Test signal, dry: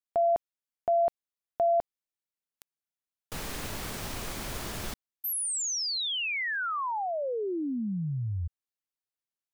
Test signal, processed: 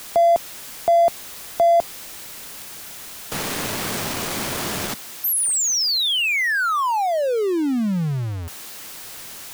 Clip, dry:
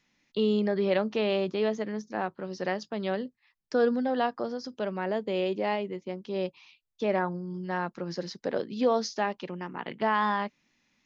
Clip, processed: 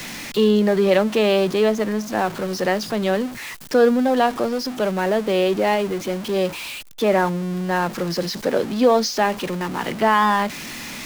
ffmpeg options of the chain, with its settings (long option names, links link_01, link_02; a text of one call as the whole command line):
ffmpeg -i in.wav -filter_complex "[0:a]aeval=exprs='val(0)+0.5*0.0168*sgn(val(0))':channel_layout=same,acrossover=split=110[link_01][link_02];[link_01]acompressor=threshold=-54dB:ratio=6:release=431[link_03];[link_03][link_02]amix=inputs=2:normalize=0,volume=8.5dB" out.wav